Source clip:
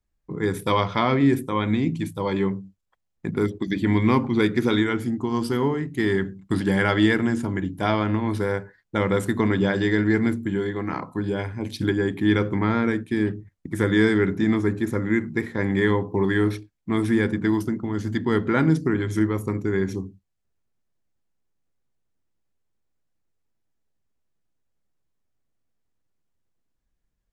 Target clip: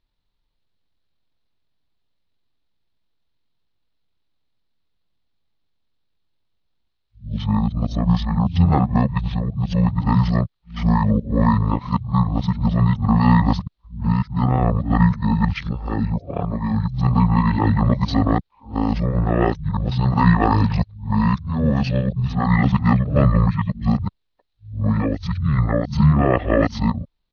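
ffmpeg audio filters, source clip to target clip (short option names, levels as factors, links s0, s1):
-af "areverse,asetrate=24046,aresample=44100,atempo=1.83401,highshelf=f=5900:t=q:w=3:g=-13.5,volume=1.68"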